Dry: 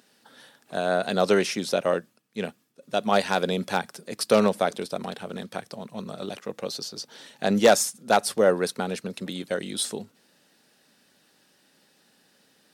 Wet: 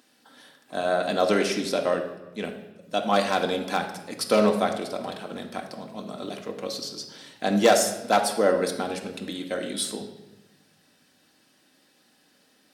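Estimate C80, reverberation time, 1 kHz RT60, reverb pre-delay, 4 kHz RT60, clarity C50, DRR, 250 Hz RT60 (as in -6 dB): 10.5 dB, 1.0 s, 0.95 s, 3 ms, 0.85 s, 8.0 dB, 2.0 dB, 1.4 s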